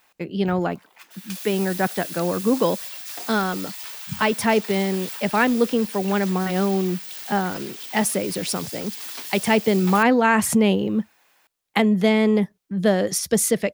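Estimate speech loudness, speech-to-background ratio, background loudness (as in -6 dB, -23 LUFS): -22.0 LUFS, 10.5 dB, -32.5 LUFS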